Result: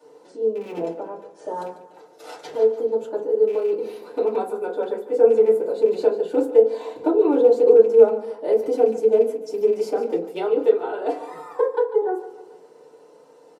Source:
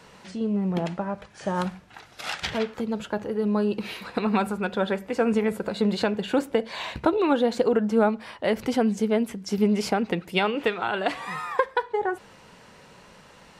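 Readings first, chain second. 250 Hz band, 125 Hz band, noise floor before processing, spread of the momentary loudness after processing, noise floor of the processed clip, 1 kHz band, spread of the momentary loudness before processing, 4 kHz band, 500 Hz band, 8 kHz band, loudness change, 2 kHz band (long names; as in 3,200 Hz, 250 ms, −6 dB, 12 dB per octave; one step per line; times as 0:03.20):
−4.5 dB, below −15 dB, −51 dBFS, 16 LU, −50 dBFS, −2.5 dB, 10 LU, below −10 dB, +9.0 dB, can't be measured, +6.0 dB, below −10 dB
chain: loose part that buzzes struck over −25 dBFS, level −19 dBFS
high-pass with resonance 450 Hz, resonance Q 3.7
parametric band 2,000 Hz −13.5 dB 2.1 octaves
on a send: repeating echo 146 ms, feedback 47%, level −14 dB
on the sum: feedback delay network reverb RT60 0.31 s, low-frequency decay 1.5×, high-frequency decay 0.45×, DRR −8 dB
level −10 dB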